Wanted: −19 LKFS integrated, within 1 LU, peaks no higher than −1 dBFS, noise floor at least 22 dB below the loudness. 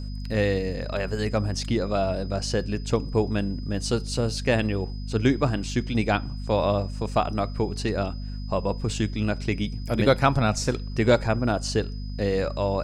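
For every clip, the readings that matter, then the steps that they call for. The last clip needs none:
mains hum 50 Hz; hum harmonics up to 250 Hz; level of the hum −30 dBFS; interfering tone 5,000 Hz; level of the tone −48 dBFS; integrated loudness −26.0 LKFS; sample peak −5.0 dBFS; target loudness −19.0 LKFS
→ mains-hum notches 50/100/150/200/250 Hz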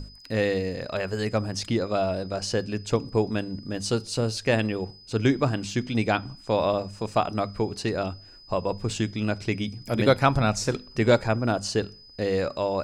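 mains hum none found; interfering tone 5,000 Hz; level of the tone −48 dBFS
→ notch filter 5,000 Hz, Q 30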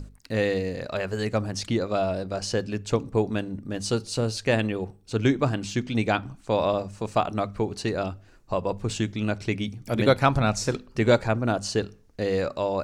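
interfering tone none found; integrated loudness −26.5 LKFS; sample peak −6.0 dBFS; target loudness −19.0 LKFS
→ level +7.5 dB
brickwall limiter −1 dBFS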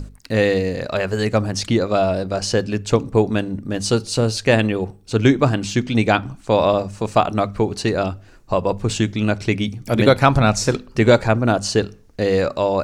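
integrated loudness −19.0 LKFS; sample peak −1.0 dBFS; background noise floor −46 dBFS

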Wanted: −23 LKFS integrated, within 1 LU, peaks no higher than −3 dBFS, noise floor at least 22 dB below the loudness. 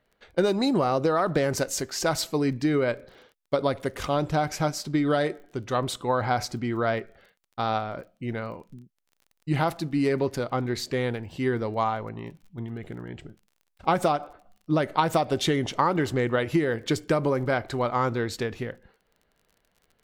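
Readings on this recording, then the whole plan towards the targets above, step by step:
crackle rate 30 per second; integrated loudness −26.5 LKFS; sample peak −7.5 dBFS; target loudness −23.0 LKFS
→ click removal
level +3.5 dB

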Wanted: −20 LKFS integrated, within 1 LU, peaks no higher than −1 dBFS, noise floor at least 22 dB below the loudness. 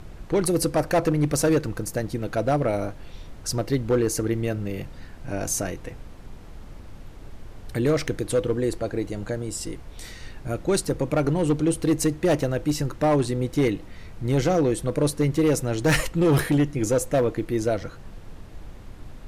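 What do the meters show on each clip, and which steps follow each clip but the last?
share of clipped samples 1.8%; peaks flattened at −15.0 dBFS; background noise floor −42 dBFS; target noise floor −47 dBFS; integrated loudness −24.5 LKFS; sample peak −15.0 dBFS; target loudness −20.0 LKFS
→ clipped peaks rebuilt −15 dBFS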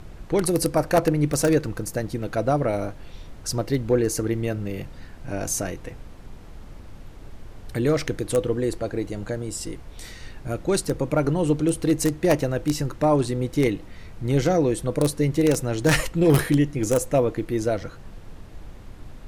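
share of clipped samples 0.0%; background noise floor −42 dBFS; target noise floor −46 dBFS
→ noise reduction from a noise print 6 dB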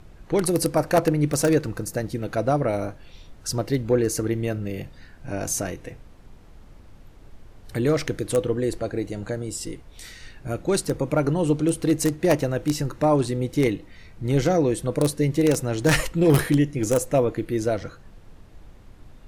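background noise floor −48 dBFS; integrated loudness −23.5 LKFS; sample peak −6.0 dBFS; target loudness −20.0 LKFS
→ level +3.5 dB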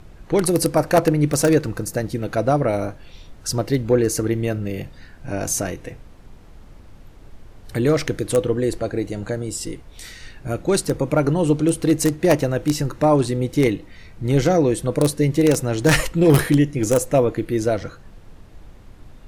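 integrated loudness −20.0 LKFS; sample peak −2.5 dBFS; background noise floor −44 dBFS

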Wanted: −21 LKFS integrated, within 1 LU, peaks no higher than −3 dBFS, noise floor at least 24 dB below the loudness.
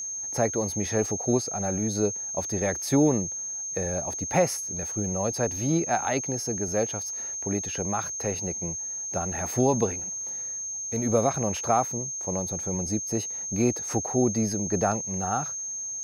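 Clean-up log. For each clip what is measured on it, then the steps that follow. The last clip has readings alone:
interfering tone 6,400 Hz; level of the tone −31 dBFS; integrated loudness −27.0 LKFS; sample peak −10.5 dBFS; target loudness −21.0 LKFS
→ notch filter 6,400 Hz, Q 30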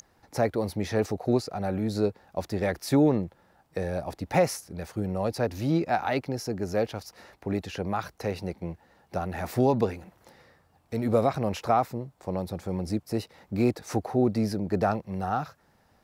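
interfering tone none found; integrated loudness −28.5 LKFS; sample peak −11.5 dBFS; target loudness −21.0 LKFS
→ level +7.5 dB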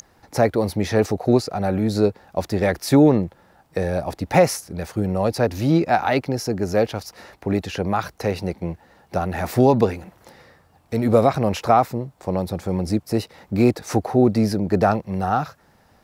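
integrated loudness −21.0 LKFS; sample peak −4.0 dBFS; background noise floor −58 dBFS

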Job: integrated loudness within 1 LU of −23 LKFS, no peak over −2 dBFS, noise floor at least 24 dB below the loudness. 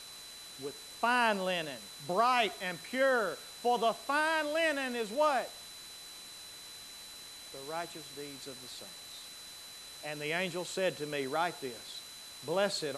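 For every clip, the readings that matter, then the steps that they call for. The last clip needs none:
interfering tone 4,000 Hz; level of the tone −49 dBFS; background noise floor −49 dBFS; target noise floor −57 dBFS; integrated loudness −33.0 LKFS; sample peak −14.5 dBFS; target loudness −23.0 LKFS
→ notch filter 4,000 Hz, Q 30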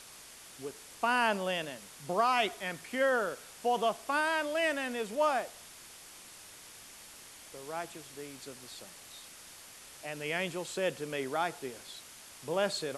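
interfering tone none found; background noise floor −52 dBFS; target noise floor −57 dBFS
→ broadband denoise 6 dB, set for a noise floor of −52 dBFS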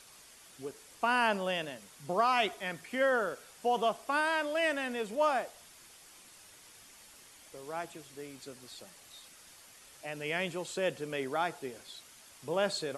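background noise floor −56 dBFS; target noise floor −57 dBFS
→ broadband denoise 6 dB, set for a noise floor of −56 dBFS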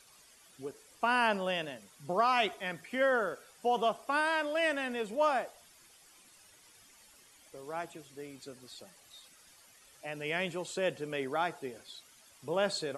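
background noise floor −61 dBFS; integrated loudness −32.5 LKFS; sample peak −15.0 dBFS; target loudness −23.0 LKFS
→ level +9.5 dB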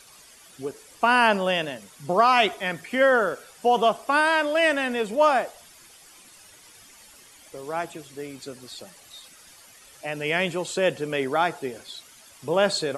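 integrated loudness −23.0 LKFS; sample peak −5.5 dBFS; background noise floor −51 dBFS

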